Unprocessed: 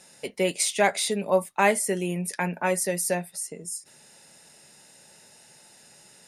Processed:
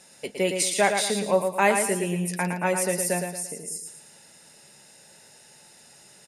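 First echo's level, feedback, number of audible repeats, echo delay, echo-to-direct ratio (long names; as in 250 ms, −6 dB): −6.0 dB, 38%, 4, 113 ms, −5.5 dB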